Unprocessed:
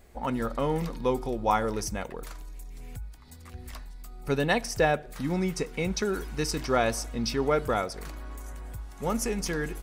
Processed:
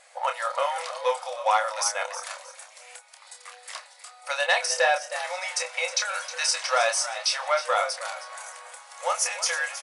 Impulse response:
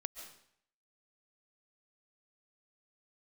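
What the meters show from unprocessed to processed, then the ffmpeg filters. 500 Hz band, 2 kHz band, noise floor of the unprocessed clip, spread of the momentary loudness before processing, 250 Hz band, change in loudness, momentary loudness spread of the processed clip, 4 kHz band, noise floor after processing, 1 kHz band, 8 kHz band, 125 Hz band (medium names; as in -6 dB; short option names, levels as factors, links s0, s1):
-0.5 dB, +7.0 dB, -47 dBFS, 18 LU, under -40 dB, +3.0 dB, 20 LU, +9.0 dB, -51 dBFS, +4.5 dB, +9.5 dB, under -40 dB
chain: -filter_complex "[0:a]tiltshelf=f=680:g=-5,asplit=2[s0][s1];[s1]alimiter=limit=0.133:level=0:latency=1:release=352,volume=0.75[s2];[s0][s2]amix=inputs=2:normalize=0,asplit=2[s3][s4];[s4]adelay=28,volume=0.473[s5];[s3][s5]amix=inputs=2:normalize=0,asplit=4[s6][s7][s8][s9];[s7]adelay=315,afreqshift=72,volume=0.211[s10];[s8]adelay=630,afreqshift=144,volume=0.0631[s11];[s9]adelay=945,afreqshift=216,volume=0.0191[s12];[s6][s10][s11][s12]amix=inputs=4:normalize=0,asoftclip=type=tanh:threshold=0.266,afftfilt=real='re*between(b*sr/4096,490,11000)':imag='im*between(b*sr/4096,490,11000)':win_size=4096:overlap=0.75"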